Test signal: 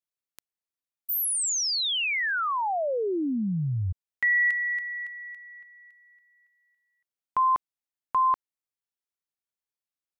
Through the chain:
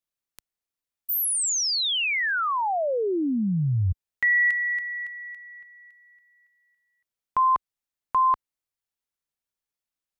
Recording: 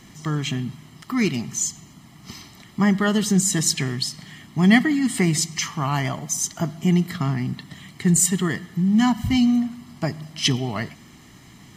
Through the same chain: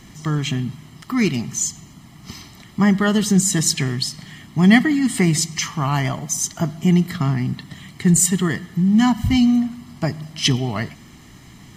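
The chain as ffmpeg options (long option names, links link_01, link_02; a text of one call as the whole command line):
ffmpeg -i in.wav -af "lowshelf=frequency=76:gain=8,volume=2dB" out.wav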